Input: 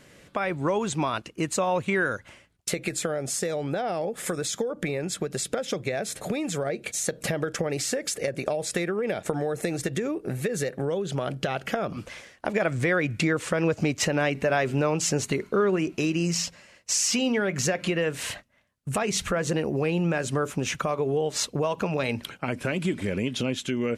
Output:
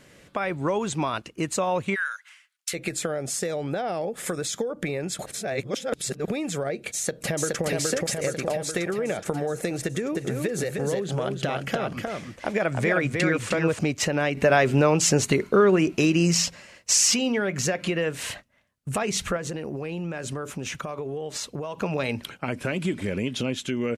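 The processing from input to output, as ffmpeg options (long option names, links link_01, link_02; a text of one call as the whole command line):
ffmpeg -i in.wav -filter_complex "[0:a]asplit=3[link_01][link_02][link_03];[link_01]afade=type=out:start_time=1.94:duration=0.02[link_04];[link_02]highpass=frequency=1300:width=0.5412,highpass=frequency=1300:width=1.3066,afade=type=in:start_time=1.94:duration=0.02,afade=type=out:start_time=2.73:duration=0.02[link_05];[link_03]afade=type=in:start_time=2.73:duration=0.02[link_06];[link_04][link_05][link_06]amix=inputs=3:normalize=0,asplit=2[link_07][link_08];[link_08]afade=type=in:start_time=6.95:duration=0.01,afade=type=out:start_time=7.64:duration=0.01,aecho=0:1:420|840|1260|1680|2100|2520|2940|3360|3780|4200|4620:0.841395|0.546907|0.355489|0.231068|0.150194|0.0976263|0.0634571|0.0412471|0.0268106|0.0174269|0.0113275[link_09];[link_07][link_09]amix=inputs=2:normalize=0,asettb=1/sr,asplit=3[link_10][link_11][link_12];[link_10]atrim=end=9.844[link_13];[link_11]atrim=start=9.84:end=13.79,asetpts=PTS-STARTPTS,afade=type=in:duration=0.004:curve=qsin,afade=type=out:start_time=3.946:duration=0.004:curve=qsin,aecho=1:1:308:0.631,atrim=end_sample=174195[link_14];[link_12]atrim=start=13.786[link_15];[link_13][link_14]acrossfade=duration=0.004:curve1=hsin:curve2=qsin[link_16];[link_16][link_15]acrossfade=duration=0.004:curve1=qsin:curve2=hsin,asettb=1/sr,asplit=3[link_17][link_18][link_19];[link_17]atrim=end=19.364[link_20];[link_18]atrim=start=19.36:end=21.83,asetpts=PTS-STARTPTS,afade=type=in:duration=0.004:curve=qsin,afade=type=out:start_time=2.466:duration=0.004:curve=qsin,acompressor=threshold=-28dB:ratio=6:attack=3.2:release=140:knee=1:detection=peak[link_21];[link_19]atrim=start=21.826[link_22];[link_20][link_21]acrossfade=duration=0.004:curve1=hsin:curve2=qsin[link_23];[link_23][link_22]acrossfade=duration=0.004:curve1=qsin:curve2=hsin,asplit=5[link_24][link_25][link_26][link_27][link_28];[link_24]atrim=end=5.192[link_29];[link_25]atrim=start=5.188:end=6.282,asetpts=PTS-STARTPTS,areverse[link_30];[link_26]atrim=start=6.278:end=14.372[link_31];[link_27]atrim=start=14.368:end=17.142,asetpts=PTS-STARTPTS,volume=5dB[link_32];[link_28]atrim=start=17.138[link_33];[link_29][link_30]acrossfade=duration=0.004:curve1=hsin:curve2=hsin[link_34];[link_34][link_31]acrossfade=duration=0.004:curve1=hsin:curve2=hsin[link_35];[link_35][link_32]acrossfade=duration=0.004:curve1=hsin:curve2=hsin[link_36];[link_36][link_33]acrossfade=duration=0.004:curve1=hsin:curve2=hsin" out.wav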